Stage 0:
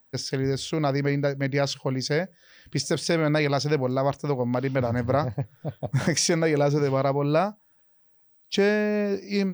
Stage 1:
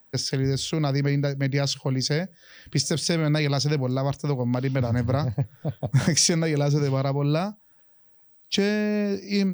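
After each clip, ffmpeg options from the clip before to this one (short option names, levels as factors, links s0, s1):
-filter_complex "[0:a]acrossover=split=230|3000[s0][s1][s2];[s1]acompressor=threshold=0.0126:ratio=2[s3];[s0][s3][s2]amix=inputs=3:normalize=0,volume=1.68"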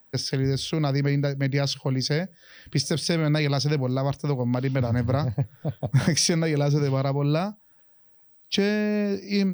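-af "equalizer=f=7100:w=5.6:g=-15"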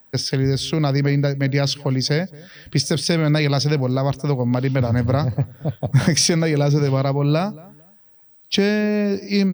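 -filter_complex "[0:a]asplit=2[s0][s1];[s1]adelay=226,lowpass=f=1100:p=1,volume=0.0891,asplit=2[s2][s3];[s3]adelay=226,lowpass=f=1100:p=1,volume=0.27[s4];[s0][s2][s4]amix=inputs=3:normalize=0,volume=1.78"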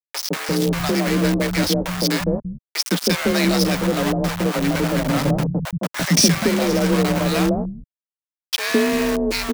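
-filter_complex "[0:a]afreqshift=38,aeval=exprs='val(0)*gte(abs(val(0)),0.1)':c=same,acrossover=split=160|710[s0][s1][s2];[s1]adelay=160[s3];[s0]adelay=340[s4];[s4][s3][s2]amix=inputs=3:normalize=0,volume=1.26"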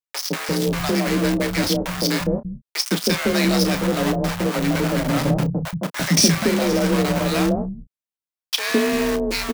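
-filter_complex "[0:a]asplit=2[s0][s1];[s1]adelay=31,volume=0.266[s2];[s0][s2]amix=inputs=2:normalize=0,volume=0.891"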